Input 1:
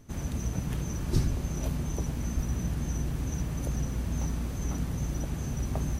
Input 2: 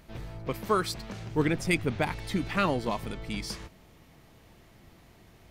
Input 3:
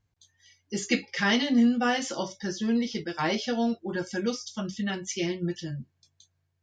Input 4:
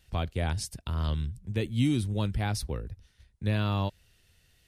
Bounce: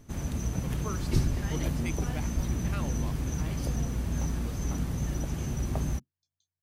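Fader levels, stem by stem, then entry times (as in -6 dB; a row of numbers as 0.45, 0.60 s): +0.5 dB, -13.5 dB, -20.0 dB, off; 0.00 s, 0.15 s, 0.20 s, off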